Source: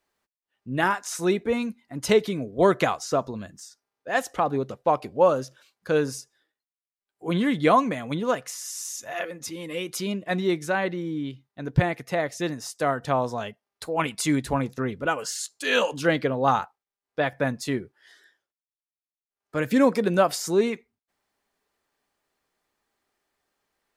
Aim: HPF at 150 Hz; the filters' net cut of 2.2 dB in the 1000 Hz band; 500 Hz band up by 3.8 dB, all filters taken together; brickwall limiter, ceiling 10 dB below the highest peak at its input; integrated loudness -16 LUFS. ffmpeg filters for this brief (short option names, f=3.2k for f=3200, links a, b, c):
-af "highpass=150,equalizer=f=500:t=o:g=6,equalizer=f=1k:t=o:g=-5.5,volume=11dB,alimiter=limit=-3.5dB:level=0:latency=1"